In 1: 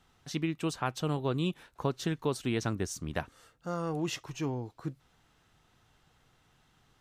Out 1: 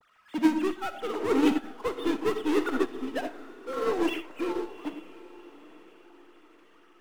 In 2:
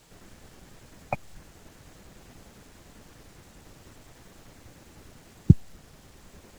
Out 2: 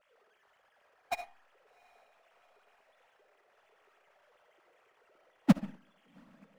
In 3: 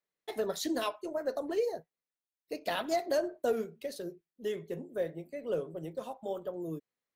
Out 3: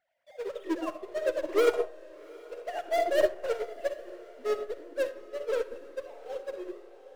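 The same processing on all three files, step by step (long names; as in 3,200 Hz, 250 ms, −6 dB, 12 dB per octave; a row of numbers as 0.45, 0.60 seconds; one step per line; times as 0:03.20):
three sine waves on the formant tracks
low-pass that shuts in the quiet parts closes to 2,800 Hz
in parallel at −11 dB: fuzz pedal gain 40 dB, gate −40 dBFS
on the sum: power curve on the samples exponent 0.5
on a send: feedback delay with all-pass diffusion 758 ms, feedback 46%, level −9 dB
on the sum: comb and all-pass reverb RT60 0.67 s, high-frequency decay 0.35×, pre-delay 20 ms, DRR 3 dB
expander for the loud parts 2.5 to 1, over −24 dBFS
normalise the peak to −12 dBFS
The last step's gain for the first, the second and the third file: −3.0, −10.5, −4.5 decibels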